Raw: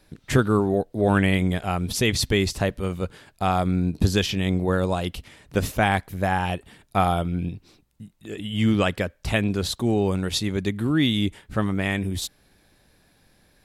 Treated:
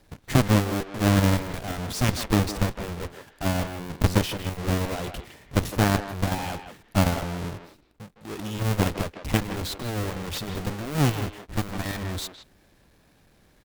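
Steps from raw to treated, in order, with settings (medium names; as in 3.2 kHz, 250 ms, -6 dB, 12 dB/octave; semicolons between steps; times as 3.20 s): square wave that keeps the level; Chebyshev shaper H 3 -24 dB, 4 -20 dB, 7 -11 dB, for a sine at -4.5 dBFS; speakerphone echo 160 ms, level -8 dB; trim -6 dB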